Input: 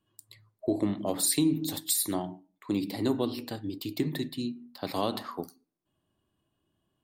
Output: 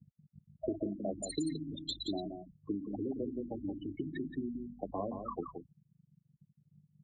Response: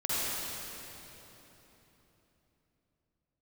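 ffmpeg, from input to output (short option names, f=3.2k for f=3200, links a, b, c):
-filter_complex "[0:a]asettb=1/sr,asplit=3[a][b][c];[a]atrim=end=2.744[d];[b]atrim=start=2.74:end=4.92,asetpts=PTS-STARTPTS,afade=t=in:d=0.004:c=qsin,afade=t=out:st=2.176:d=0.004:c=qsin,acompressor=threshold=-31dB:ratio=2.5[e];[c]atrim=start=4.916[f];[d][e]acrossfade=d=0.004:c1=hsin:c2=qsin[g];[g][f]acrossfade=d=0.004:c1=qsin:c2=hsin,aemphasis=mode=reproduction:type=50kf,aeval=exprs='val(0)+0.00562*(sin(2*PI*50*n/s)+sin(2*PI*2*50*n/s)/2+sin(2*PI*3*50*n/s)/3+sin(2*PI*4*50*n/s)/4+sin(2*PI*5*50*n/s)/5)':c=same,asplit=2[h][i];[i]adelay=30,volume=-10.5dB[j];[h][j]amix=inputs=2:normalize=0,acrusher=bits=6:mix=0:aa=0.000001,acrossover=split=230|4000[k][l][m];[k]acompressor=threshold=-39dB:ratio=4[n];[l]acompressor=threshold=-41dB:ratio=4[o];[m]acompressor=threshold=-46dB:ratio=4[p];[n][o][p]amix=inputs=3:normalize=0,afftfilt=real='re*gte(hypot(re,im),0.0316)':imag='im*gte(hypot(re,im),0.0316)':win_size=1024:overlap=0.75,bass=f=250:g=-12,treble=f=4k:g=12,aecho=1:1:174:0.447,volume=6dB" -ar 44100 -c:a libvorbis -b:a 64k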